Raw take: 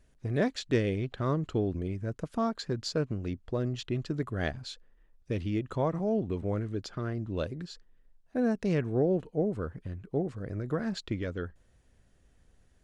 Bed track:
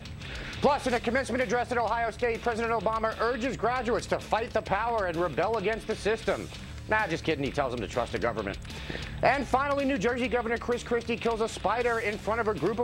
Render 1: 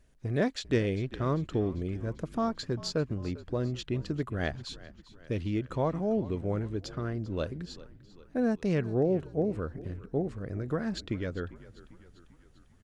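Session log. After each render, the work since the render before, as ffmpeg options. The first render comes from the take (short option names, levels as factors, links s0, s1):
-filter_complex "[0:a]asplit=6[s0][s1][s2][s3][s4][s5];[s1]adelay=396,afreqshift=-48,volume=0.126[s6];[s2]adelay=792,afreqshift=-96,volume=0.0741[s7];[s3]adelay=1188,afreqshift=-144,volume=0.0437[s8];[s4]adelay=1584,afreqshift=-192,volume=0.026[s9];[s5]adelay=1980,afreqshift=-240,volume=0.0153[s10];[s0][s6][s7][s8][s9][s10]amix=inputs=6:normalize=0"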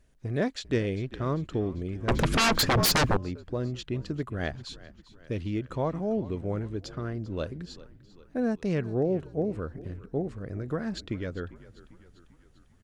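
-filter_complex "[0:a]asettb=1/sr,asplit=3[s0][s1][s2];[s0]atrim=end=2.084[s3];[s1]atrim=start=2.08:end=3.17,asetpts=PTS-STARTPTS,afade=t=in:d=0.004:c=qsin,afade=t=out:st=1.086:d=0.004:c=qsin,aeval=exprs='0.112*sin(PI/2*7.08*val(0)/0.112)':c=same[s4];[s2]atrim=start=3.166[s5];[s3][s4]acrossfade=d=0.004:c1=hsin:c2=qsin[s6];[s6][s5]acrossfade=d=0.004:c1=qsin:c2=hsin"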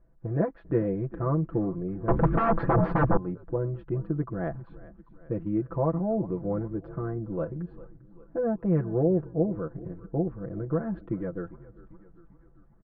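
-af "lowpass=f=1300:w=0.5412,lowpass=f=1300:w=1.3066,aecho=1:1:6:0.87"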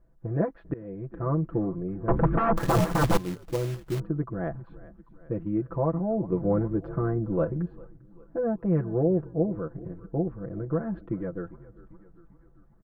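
-filter_complex "[0:a]asettb=1/sr,asplit=3[s0][s1][s2];[s0]atrim=end=2.574[s3];[s1]atrim=start=2.57:end=4,asetpts=PTS-STARTPTS,afade=t=in:d=0.004:c=qsin,afade=t=out:st=1.426:d=0.004:c=qsin,acrusher=bits=3:mode=log:mix=0:aa=0.000001[s4];[s2]atrim=start=3.996[s5];[s3][s4]acrossfade=d=0.004:c1=hsin:c2=qsin[s6];[s6][s5]acrossfade=d=0.004:c1=qsin:c2=hsin,asettb=1/sr,asplit=3[s7][s8][s9];[s7]atrim=end=6.324[s10];[s8]atrim=start=6.32:end=7.68,asetpts=PTS-STARTPTS,afade=t=in:d=0.004:c=qsin,afade=t=out:st=1.356:d=0.004:c=qsin,acontrast=29[s11];[s9]atrim=start=7.676[s12];[s10][s11]acrossfade=d=0.004:c1=hsin:c2=qsin[s13];[s13][s12]acrossfade=d=0.004:c1=qsin:c2=hsin,asplit=2[s14][s15];[s14]atrim=end=0.74,asetpts=PTS-STARTPTS,afade=t=out:st=0.736:d=0.004:c=hsin:silence=0.0668344[s16];[s15]atrim=start=0.74,asetpts=PTS-STARTPTS,afade=t=in:d=0.59:silence=0.0668344[s17];[s16][s17]concat=n=2:v=0:a=1"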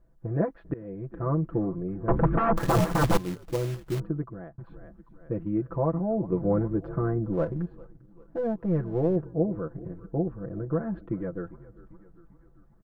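-filter_complex "[0:a]asettb=1/sr,asplit=3[s0][s1][s2];[s0]atrim=end=7.334[s3];[s1]atrim=start=7.33:end=9.16,asetpts=PTS-STARTPTS,afade=t=in:d=0.004:c=qsin,afade=t=out:st=1.826:d=0.004:c=qsin,aeval=exprs='if(lt(val(0),0),0.708*val(0),val(0))':c=same[s4];[s2]atrim=start=9.156[s5];[s3][s4]acrossfade=d=0.004:c1=hsin:c2=qsin[s6];[s6][s5]acrossfade=d=0.004:c1=qsin:c2=hsin,asettb=1/sr,asplit=3[s7][s8][s9];[s7]atrim=end=10.194[s10];[s8]atrim=start=10.19:end=10.73,asetpts=PTS-STARTPTS,afade=t=in:d=0.004:c=qsin,afade=t=out:st=0.536:d=0.004:c=qsin,asuperstop=centerf=2100:order=4:qfactor=6.7[s11];[s9]atrim=start=10.726[s12];[s10][s11]acrossfade=d=0.004:c1=hsin:c2=qsin[s13];[s13][s12]acrossfade=d=0.004:c1=qsin:c2=hsin,asplit=2[s14][s15];[s14]atrim=end=4.58,asetpts=PTS-STARTPTS,afade=t=out:st=4.07:d=0.51[s16];[s15]atrim=start=4.58,asetpts=PTS-STARTPTS,afade=t=in:d=0.004:c=hsin[s17];[s16][s17]concat=n=2:v=0:a=1"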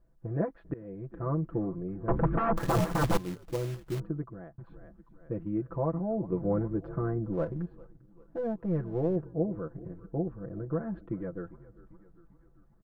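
-af "volume=0.631"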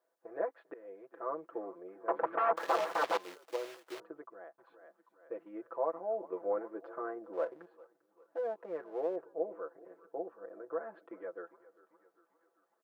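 -filter_complex "[0:a]acrossover=split=5100[s0][s1];[s1]acompressor=threshold=0.00158:ratio=4:attack=1:release=60[s2];[s0][s2]amix=inputs=2:normalize=0,highpass=f=470:w=0.5412,highpass=f=470:w=1.3066"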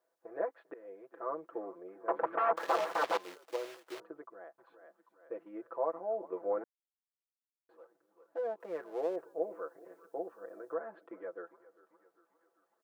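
-filter_complex "[0:a]asettb=1/sr,asplit=3[s0][s1][s2];[s0]atrim=end=8.604[s3];[s1]atrim=start=8.6:end=10.74,asetpts=PTS-STARTPTS,afade=t=in:d=0.004:c=qsin,afade=t=out:st=2.136:d=0.004:c=qsin,highshelf=f=2900:g=12[s4];[s2]atrim=start=10.736[s5];[s3][s4]acrossfade=d=0.004:c1=hsin:c2=qsin[s6];[s6][s5]acrossfade=d=0.004:c1=qsin:c2=hsin,asplit=3[s7][s8][s9];[s7]atrim=end=6.64,asetpts=PTS-STARTPTS,afade=t=out:st=6.636:d=0.004:c=hsin[s10];[s8]atrim=start=6.64:end=7.69,asetpts=PTS-STARTPTS,volume=0[s11];[s9]atrim=start=7.69,asetpts=PTS-STARTPTS,afade=t=in:d=0.004:c=hsin[s12];[s10][s11][s12]concat=n=3:v=0:a=1"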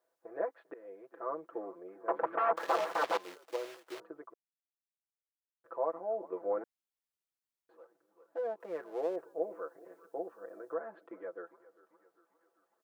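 -filter_complex "[0:a]asplit=3[s0][s1][s2];[s0]atrim=end=4.34,asetpts=PTS-STARTPTS,afade=t=out:st=4.336:d=0.004:c=hsin[s3];[s1]atrim=start=4.34:end=5.64,asetpts=PTS-STARTPTS,volume=0[s4];[s2]atrim=start=5.64,asetpts=PTS-STARTPTS,afade=t=in:d=0.004:c=hsin[s5];[s3][s4][s5]concat=n=3:v=0:a=1"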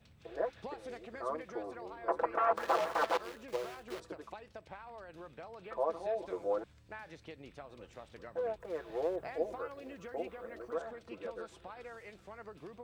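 -filter_complex "[1:a]volume=0.0841[s0];[0:a][s0]amix=inputs=2:normalize=0"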